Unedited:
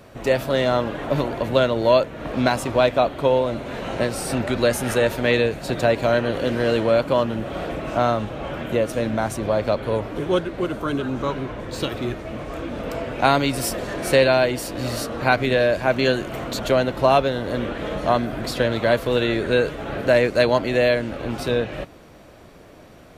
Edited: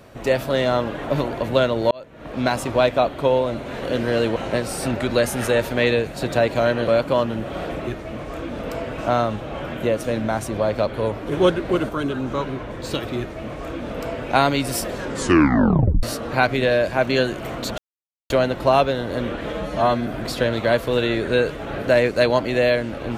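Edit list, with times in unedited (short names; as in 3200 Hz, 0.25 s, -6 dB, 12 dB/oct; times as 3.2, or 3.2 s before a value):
1.91–2.58 fade in
6.35–6.88 move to 3.83
10.21–10.78 gain +4 dB
12.07–13.18 copy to 7.87
13.84 tape stop 1.08 s
16.67 insert silence 0.52 s
17.9–18.26 stretch 1.5×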